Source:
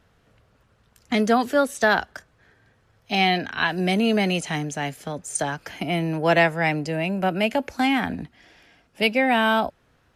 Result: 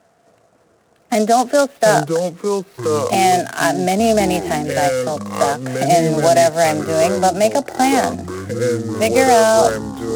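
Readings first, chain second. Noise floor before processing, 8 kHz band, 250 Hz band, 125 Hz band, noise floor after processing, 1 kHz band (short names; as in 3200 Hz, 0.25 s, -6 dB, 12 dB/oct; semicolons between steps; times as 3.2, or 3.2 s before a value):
-63 dBFS, +12.5 dB, +4.5 dB, +5.5 dB, -56 dBFS, +9.0 dB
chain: HPF 200 Hz 12 dB/oct; bell 680 Hz +13.5 dB 0.28 oct; limiter -10 dBFS, peak gain reduction 10 dB; echoes that change speed 0.272 s, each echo -6 st, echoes 3, each echo -6 dB; air absorption 310 m; noise-modulated delay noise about 5900 Hz, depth 0.04 ms; gain +6 dB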